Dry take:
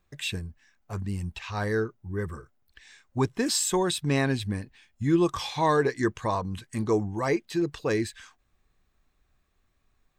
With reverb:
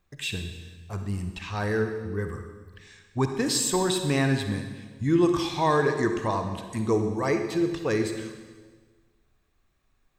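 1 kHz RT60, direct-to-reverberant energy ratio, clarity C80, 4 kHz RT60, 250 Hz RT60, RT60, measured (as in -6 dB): 1.4 s, 6.0 dB, 8.0 dB, 1.3 s, 1.6 s, 1.5 s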